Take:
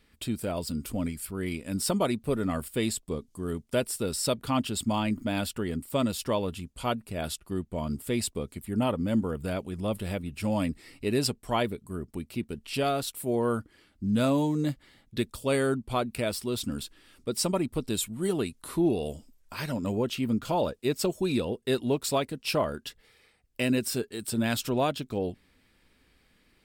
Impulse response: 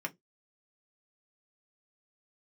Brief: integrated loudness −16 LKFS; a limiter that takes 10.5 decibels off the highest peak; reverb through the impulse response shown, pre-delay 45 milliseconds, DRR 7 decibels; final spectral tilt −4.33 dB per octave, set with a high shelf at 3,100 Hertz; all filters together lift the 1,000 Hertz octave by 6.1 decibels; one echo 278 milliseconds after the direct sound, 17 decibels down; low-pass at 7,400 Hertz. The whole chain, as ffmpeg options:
-filter_complex "[0:a]lowpass=7400,equalizer=frequency=1000:width_type=o:gain=7,highshelf=frequency=3100:gain=8.5,alimiter=limit=-19.5dB:level=0:latency=1,aecho=1:1:278:0.141,asplit=2[link_01][link_02];[1:a]atrim=start_sample=2205,adelay=45[link_03];[link_02][link_03]afir=irnorm=-1:irlink=0,volume=-9.5dB[link_04];[link_01][link_04]amix=inputs=2:normalize=0,volume=14dB"

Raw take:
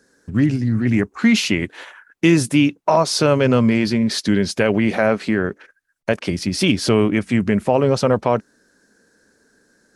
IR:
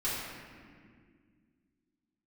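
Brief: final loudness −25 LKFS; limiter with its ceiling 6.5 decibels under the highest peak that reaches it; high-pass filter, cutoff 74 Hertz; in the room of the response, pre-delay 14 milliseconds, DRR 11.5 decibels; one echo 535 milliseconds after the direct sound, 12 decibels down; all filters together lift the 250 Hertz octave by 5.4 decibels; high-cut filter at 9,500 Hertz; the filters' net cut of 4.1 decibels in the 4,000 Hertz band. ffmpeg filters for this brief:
-filter_complex "[0:a]highpass=74,lowpass=9500,equalizer=frequency=250:width_type=o:gain=6.5,equalizer=frequency=4000:width_type=o:gain=-5.5,alimiter=limit=-6.5dB:level=0:latency=1,aecho=1:1:535:0.251,asplit=2[link_01][link_02];[1:a]atrim=start_sample=2205,adelay=14[link_03];[link_02][link_03]afir=irnorm=-1:irlink=0,volume=-18.5dB[link_04];[link_01][link_04]amix=inputs=2:normalize=0,volume=-8.5dB"

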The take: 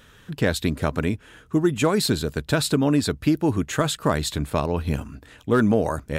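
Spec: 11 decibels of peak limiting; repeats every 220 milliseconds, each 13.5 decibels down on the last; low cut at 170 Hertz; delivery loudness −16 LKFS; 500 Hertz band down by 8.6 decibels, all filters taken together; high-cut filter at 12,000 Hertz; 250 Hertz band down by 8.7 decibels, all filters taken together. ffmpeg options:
ffmpeg -i in.wav -af "highpass=170,lowpass=12000,equalizer=frequency=250:width_type=o:gain=-7.5,equalizer=frequency=500:width_type=o:gain=-8.5,alimiter=limit=-20.5dB:level=0:latency=1,aecho=1:1:220|440:0.211|0.0444,volume=16dB" out.wav

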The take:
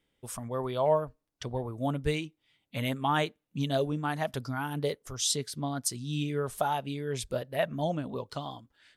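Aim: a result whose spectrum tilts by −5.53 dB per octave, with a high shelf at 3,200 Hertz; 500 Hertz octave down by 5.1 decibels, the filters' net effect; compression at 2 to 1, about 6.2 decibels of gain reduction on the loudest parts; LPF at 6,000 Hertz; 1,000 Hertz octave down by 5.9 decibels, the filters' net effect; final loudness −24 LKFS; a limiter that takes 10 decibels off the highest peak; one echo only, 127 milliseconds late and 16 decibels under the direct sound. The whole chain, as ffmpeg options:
ffmpeg -i in.wav -af "lowpass=6000,equalizer=frequency=500:width_type=o:gain=-4.5,equalizer=frequency=1000:width_type=o:gain=-5.5,highshelf=frequency=3200:gain=-5,acompressor=threshold=-36dB:ratio=2,alimiter=level_in=8dB:limit=-24dB:level=0:latency=1,volume=-8dB,aecho=1:1:127:0.158,volume=18.5dB" out.wav

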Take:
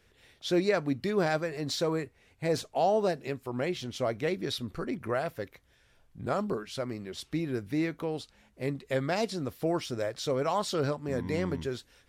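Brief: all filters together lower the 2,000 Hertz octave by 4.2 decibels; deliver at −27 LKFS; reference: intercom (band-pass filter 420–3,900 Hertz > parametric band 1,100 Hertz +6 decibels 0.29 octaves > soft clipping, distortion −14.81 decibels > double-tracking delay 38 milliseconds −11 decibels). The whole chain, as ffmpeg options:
ffmpeg -i in.wav -filter_complex "[0:a]highpass=420,lowpass=3900,equalizer=frequency=1100:width_type=o:width=0.29:gain=6,equalizer=frequency=2000:width_type=o:gain=-5.5,asoftclip=threshold=-24.5dB,asplit=2[link_01][link_02];[link_02]adelay=38,volume=-11dB[link_03];[link_01][link_03]amix=inputs=2:normalize=0,volume=9dB" out.wav

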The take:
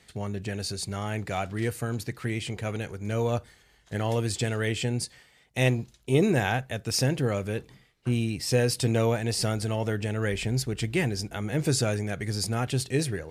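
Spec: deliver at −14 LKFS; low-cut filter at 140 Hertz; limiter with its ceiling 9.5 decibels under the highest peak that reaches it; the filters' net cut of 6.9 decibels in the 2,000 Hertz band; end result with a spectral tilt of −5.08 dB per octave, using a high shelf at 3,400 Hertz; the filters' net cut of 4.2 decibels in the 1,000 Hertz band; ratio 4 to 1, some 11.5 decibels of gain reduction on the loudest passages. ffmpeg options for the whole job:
ffmpeg -i in.wav -af "highpass=140,equalizer=frequency=1000:width_type=o:gain=-4.5,equalizer=frequency=2000:width_type=o:gain=-5,highshelf=frequency=3400:gain=-8,acompressor=threshold=-33dB:ratio=4,volume=27dB,alimiter=limit=-3.5dB:level=0:latency=1" out.wav

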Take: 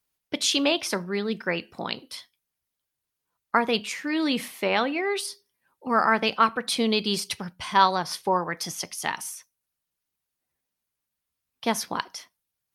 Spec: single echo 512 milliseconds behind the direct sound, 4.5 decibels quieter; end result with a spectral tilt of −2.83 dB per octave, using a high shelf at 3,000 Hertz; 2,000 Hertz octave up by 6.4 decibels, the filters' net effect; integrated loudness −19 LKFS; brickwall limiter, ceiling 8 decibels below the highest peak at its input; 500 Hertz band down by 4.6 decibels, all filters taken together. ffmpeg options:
ffmpeg -i in.wav -af "equalizer=frequency=500:width_type=o:gain=-6.5,equalizer=frequency=2000:width_type=o:gain=6,highshelf=frequency=3000:gain=7,alimiter=limit=-10.5dB:level=0:latency=1,aecho=1:1:512:0.596,volume=4.5dB" out.wav

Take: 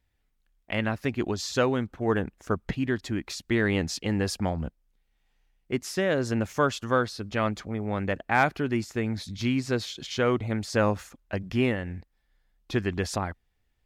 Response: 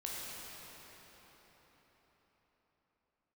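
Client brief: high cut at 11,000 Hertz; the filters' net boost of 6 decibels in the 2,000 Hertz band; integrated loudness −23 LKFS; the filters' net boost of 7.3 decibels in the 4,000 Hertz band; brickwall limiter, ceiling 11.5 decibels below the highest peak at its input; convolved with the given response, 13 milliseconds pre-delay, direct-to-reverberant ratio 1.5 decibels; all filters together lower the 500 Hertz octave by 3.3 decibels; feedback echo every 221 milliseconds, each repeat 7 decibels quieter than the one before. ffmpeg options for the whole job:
-filter_complex "[0:a]lowpass=11000,equalizer=frequency=500:width_type=o:gain=-4.5,equalizer=frequency=2000:width_type=o:gain=6.5,equalizer=frequency=4000:width_type=o:gain=7.5,alimiter=limit=-15.5dB:level=0:latency=1,aecho=1:1:221|442|663|884|1105:0.447|0.201|0.0905|0.0407|0.0183,asplit=2[link_01][link_02];[1:a]atrim=start_sample=2205,adelay=13[link_03];[link_02][link_03]afir=irnorm=-1:irlink=0,volume=-3.5dB[link_04];[link_01][link_04]amix=inputs=2:normalize=0,volume=3dB"

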